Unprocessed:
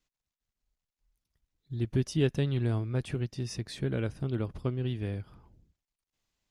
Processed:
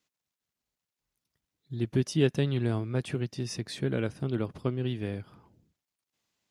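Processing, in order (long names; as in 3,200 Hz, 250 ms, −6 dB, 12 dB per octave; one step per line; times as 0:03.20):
high-pass filter 130 Hz 12 dB per octave
level +3 dB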